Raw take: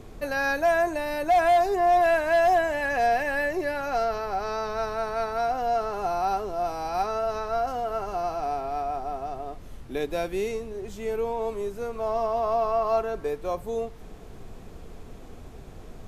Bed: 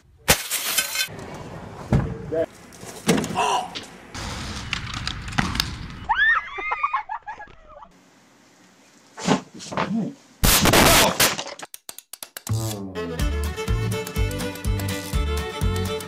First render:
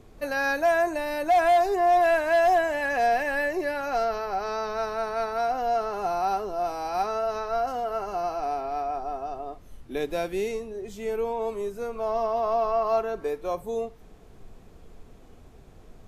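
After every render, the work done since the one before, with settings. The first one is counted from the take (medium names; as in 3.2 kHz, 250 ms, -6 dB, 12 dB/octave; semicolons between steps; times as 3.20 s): noise print and reduce 7 dB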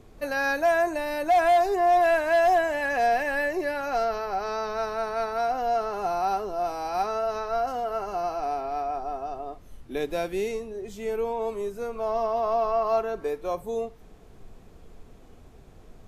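no audible change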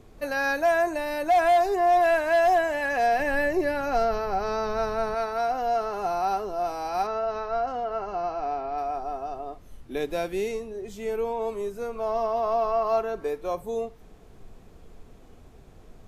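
3.19–5.15 s: bass shelf 310 Hz +10 dB; 7.07–8.78 s: distance through air 130 m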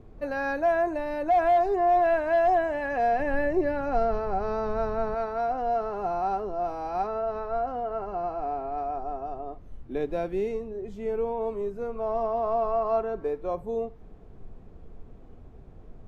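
low-pass 1 kHz 6 dB/octave; bass shelf 210 Hz +3.5 dB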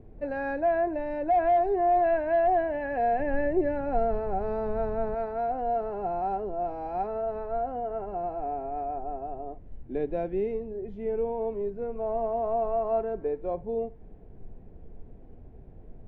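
low-pass 2 kHz 12 dB/octave; peaking EQ 1.2 kHz -12.5 dB 0.48 oct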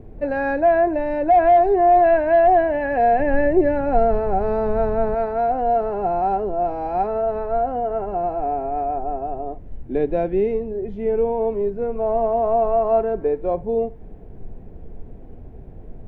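trim +9 dB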